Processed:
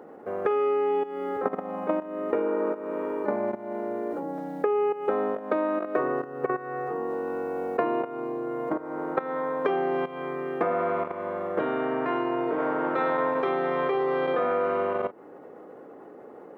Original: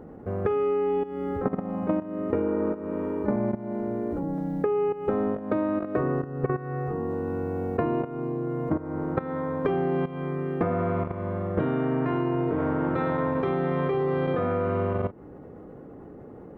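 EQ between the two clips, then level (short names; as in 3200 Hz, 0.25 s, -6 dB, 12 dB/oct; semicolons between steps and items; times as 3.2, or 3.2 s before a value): HPF 450 Hz 12 dB/oct; +4.0 dB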